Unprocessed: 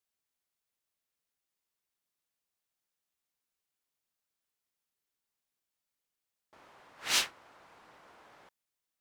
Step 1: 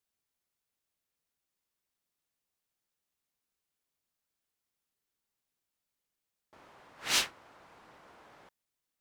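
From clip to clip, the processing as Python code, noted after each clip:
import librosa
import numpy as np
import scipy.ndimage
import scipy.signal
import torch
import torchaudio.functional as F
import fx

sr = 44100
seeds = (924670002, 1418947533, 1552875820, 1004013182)

y = fx.low_shelf(x, sr, hz=400.0, db=4.5)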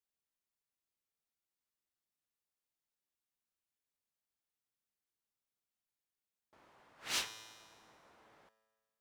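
y = fx.comb_fb(x, sr, f0_hz=110.0, decay_s=1.6, harmonics='all', damping=0.0, mix_pct=70)
y = y * 10.0 ** (1.5 / 20.0)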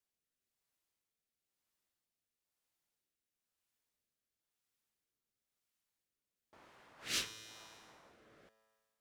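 y = fx.dynamic_eq(x, sr, hz=760.0, q=0.78, threshold_db=-59.0, ratio=4.0, max_db=-5)
y = fx.rotary(y, sr, hz=1.0)
y = y * 10.0 ** (5.5 / 20.0)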